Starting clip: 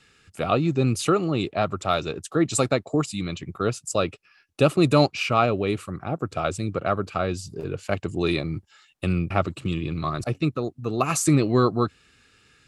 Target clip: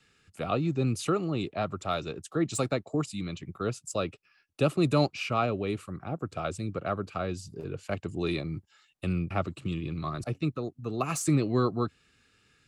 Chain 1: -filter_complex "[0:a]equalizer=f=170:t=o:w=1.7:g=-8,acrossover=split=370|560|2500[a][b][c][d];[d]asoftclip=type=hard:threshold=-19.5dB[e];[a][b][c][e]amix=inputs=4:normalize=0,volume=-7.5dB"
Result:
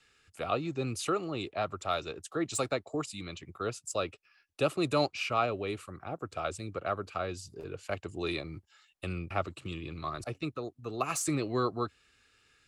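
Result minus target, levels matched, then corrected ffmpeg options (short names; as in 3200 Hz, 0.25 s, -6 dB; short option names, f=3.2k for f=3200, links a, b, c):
125 Hz band -5.0 dB
-filter_complex "[0:a]equalizer=f=170:t=o:w=1.7:g=2.5,acrossover=split=370|560|2500[a][b][c][d];[d]asoftclip=type=hard:threshold=-19.5dB[e];[a][b][c][e]amix=inputs=4:normalize=0,volume=-7.5dB"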